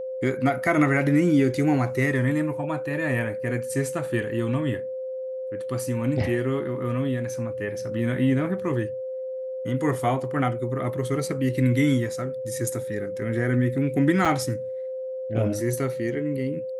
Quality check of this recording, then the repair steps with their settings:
whine 520 Hz -29 dBFS
14.25–14.26 s: dropout 5.9 ms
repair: band-stop 520 Hz, Q 30; interpolate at 14.25 s, 5.9 ms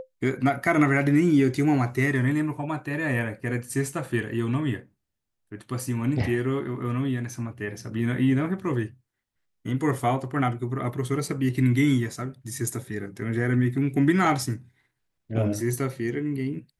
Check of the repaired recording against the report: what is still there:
nothing left

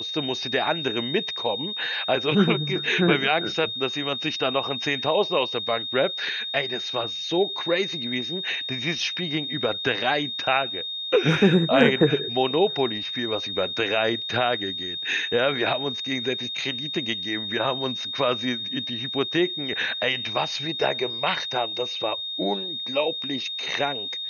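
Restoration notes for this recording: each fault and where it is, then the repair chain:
whine 3.7 kHz -29 dBFS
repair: band-stop 3.7 kHz, Q 30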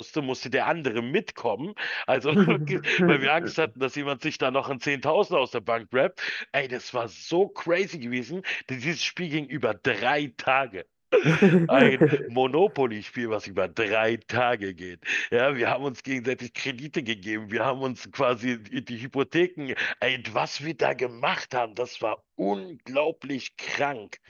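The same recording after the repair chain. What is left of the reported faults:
nothing left

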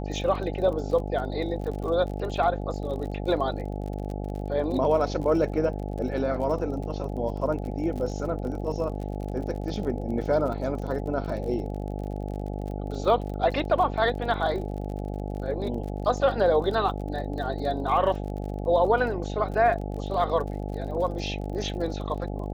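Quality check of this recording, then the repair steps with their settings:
buzz 50 Hz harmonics 17 -32 dBFS
crackle 39 per s -35 dBFS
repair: de-click; de-hum 50 Hz, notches 17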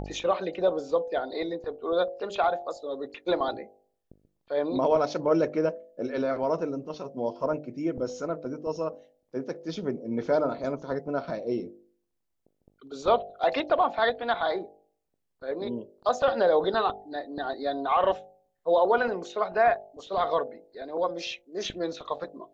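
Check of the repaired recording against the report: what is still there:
nothing left

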